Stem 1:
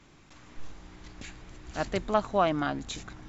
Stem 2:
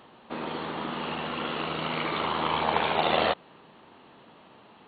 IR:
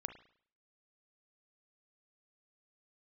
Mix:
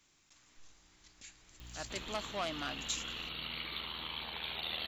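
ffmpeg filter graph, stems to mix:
-filter_complex "[0:a]asoftclip=type=tanh:threshold=0.1,volume=0.211,afade=t=in:st=1.3:d=0.78:silence=0.473151[s0];[1:a]aeval=exprs='val(0)+0.00708*(sin(2*PI*60*n/s)+sin(2*PI*2*60*n/s)/2+sin(2*PI*3*60*n/s)/3+sin(2*PI*4*60*n/s)/4+sin(2*PI*5*60*n/s)/5)':c=same,acompressor=threshold=0.0112:ratio=2,equalizer=f=770:w=0.33:g=-14,adelay=1600,volume=0.631[s1];[s0][s1]amix=inputs=2:normalize=0,equalizer=f=160:w=1.5:g=-2,crystalizer=i=8:c=0"

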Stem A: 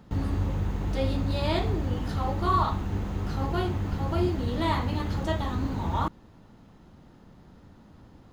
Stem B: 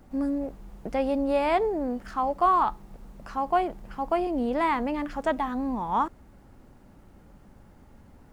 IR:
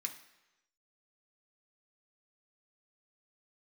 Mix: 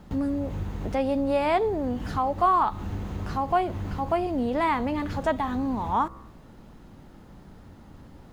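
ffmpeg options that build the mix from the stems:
-filter_complex "[0:a]bandreject=f=65.85:t=h:w=4,bandreject=f=131.7:t=h:w=4,bandreject=f=197.55:t=h:w=4,bandreject=f=263.4:t=h:w=4,bandreject=f=329.25:t=h:w=4,bandreject=f=395.1:t=h:w=4,bandreject=f=460.95:t=h:w=4,bandreject=f=526.8:t=h:w=4,bandreject=f=592.65:t=h:w=4,bandreject=f=658.5:t=h:w=4,bandreject=f=724.35:t=h:w=4,bandreject=f=790.2:t=h:w=4,bandreject=f=856.05:t=h:w=4,bandreject=f=921.9:t=h:w=4,bandreject=f=987.75:t=h:w=4,bandreject=f=1053.6:t=h:w=4,bandreject=f=1119.45:t=h:w=4,bandreject=f=1185.3:t=h:w=4,bandreject=f=1251.15:t=h:w=4,bandreject=f=1317:t=h:w=4,bandreject=f=1382.85:t=h:w=4,bandreject=f=1448.7:t=h:w=4,bandreject=f=1514.55:t=h:w=4,bandreject=f=1580.4:t=h:w=4,bandreject=f=1646.25:t=h:w=4,bandreject=f=1712.1:t=h:w=4,bandreject=f=1777.95:t=h:w=4,bandreject=f=1843.8:t=h:w=4,bandreject=f=1909.65:t=h:w=4,bandreject=f=1975.5:t=h:w=4,acompressor=threshold=0.02:ratio=2,volume=1.33[s0];[1:a]volume=1.06,asplit=2[s1][s2];[s2]apad=whole_len=367336[s3];[s0][s3]sidechaincompress=threshold=0.0282:ratio=8:attack=16:release=163[s4];[s4][s1]amix=inputs=2:normalize=0"

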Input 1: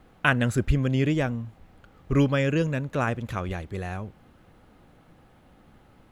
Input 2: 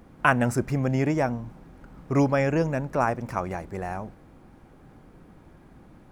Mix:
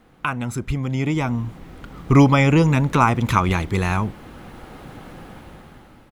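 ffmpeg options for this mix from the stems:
-filter_complex "[0:a]lowshelf=f=380:g=-7.5,volume=1.33[s0];[1:a]bandreject=f=650:w=12,adelay=0.7,volume=0.531,asplit=2[s1][s2];[s2]apad=whole_len=269485[s3];[s0][s3]sidechaincompress=threshold=0.0251:ratio=8:attack=16:release=175[s4];[s4][s1]amix=inputs=2:normalize=0,dynaudnorm=f=320:g=7:m=6.31"

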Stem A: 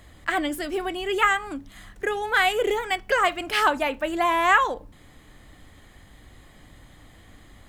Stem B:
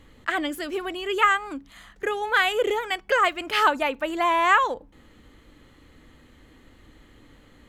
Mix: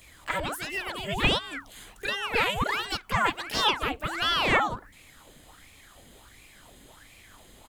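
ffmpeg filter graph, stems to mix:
-filter_complex "[0:a]aexciter=amount=1.4:drive=9.9:freq=2600,acompressor=threshold=0.0355:ratio=6,volume=0.398[s0];[1:a]aeval=exprs='val(0)*sin(2*PI*1300*n/s+1300*0.85/1.4*sin(2*PI*1.4*n/s))':c=same,adelay=15,volume=0.841[s1];[s0][s1]amix=inputs=2:normalize=0"

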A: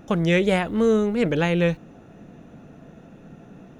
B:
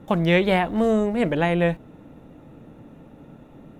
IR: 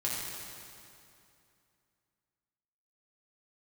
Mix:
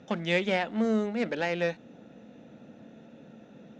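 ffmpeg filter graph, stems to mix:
-filter_complex "[0:a]lowshelf=f=500:g=-12,asoftclip=type=tanh:threshold=0.0596,volume=0.631[s0];[1:a]volume=-1,volume=0.316[s1];[s0][s1]amix=inputs=2:normalize=0,highpass=110,equalizer=f=220:t=q:w=4:g=9,equalizer=f=520:t=q:w=4:g=7,equalizer=f=1100:t=q:w=4:g=-7,equalizer=f=3700:t=q:w=4:g=5,lowpass=f=6500:w=0.5412,lowpass=f=6500:w=1.3066"

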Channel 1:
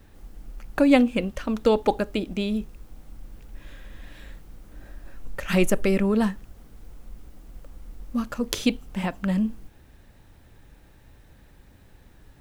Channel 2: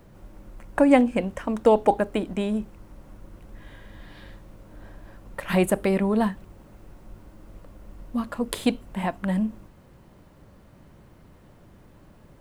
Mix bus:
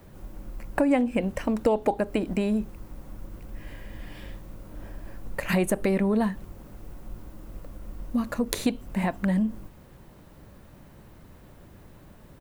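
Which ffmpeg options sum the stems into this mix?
-filter_complex "[0:a]highshelf=f=9200:g=11,volume=0.531[s0];[1:a]adelay=0.6,volume=1.12,asplit=2[s1][s2];[s2]apad=whole_len=547039[s3];[s0][s3]sidechaincompress=threshold=0.0562:ratio=8:attack=16:release=119[s4];[s4][s1]amix=inputs=2:normalize=0,acompressor=threshold=0.0794:ratio=2.5"

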